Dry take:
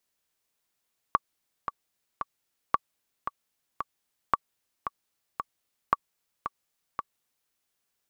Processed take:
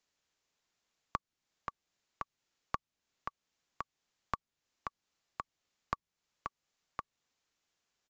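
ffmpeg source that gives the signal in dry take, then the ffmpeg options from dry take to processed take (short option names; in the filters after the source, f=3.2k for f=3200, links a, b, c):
-f lavfi -i "aevalsrc='pow(10,(-7.5-9.5*gte(mod(t,3*60/113),60/113))/20)*sin(2*PI*1140*mod(t,60/113))*exp(-6.91*mod(t,60/113)/0.03)':d=6.37:s=44100"
-filter_complex "[0:a]acrossover=split=270[a][b];[b]acompressor=threshold=-42dB:ratio=2[c];[a][c]amix=inputs=2:normalize=0,acrusher=bits=6:mode=log:mix=0:aa=0.000001,aresample=16000,aresample=44100"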